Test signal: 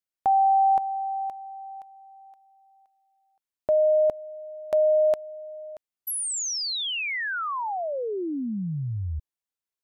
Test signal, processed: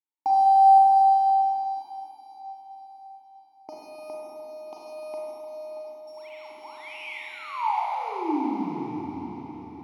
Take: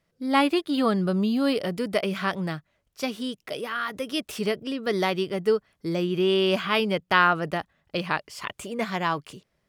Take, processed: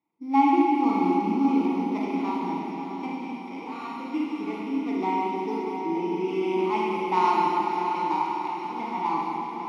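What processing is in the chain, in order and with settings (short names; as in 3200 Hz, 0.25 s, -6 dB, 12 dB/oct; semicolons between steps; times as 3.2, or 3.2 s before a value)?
sample sorter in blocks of 8 samples; vowel filter u; bell 890 Hz +9.5 dB 1.7 oct; notch 1700 Hz, Q 22; on a send: diffused feedback echo 0.622 s, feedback 44%, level -7 dB; on the sum: Schroeder reverb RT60 2.4 s, combs from 33 ms, DRR -4 dB; gain +1.5 dB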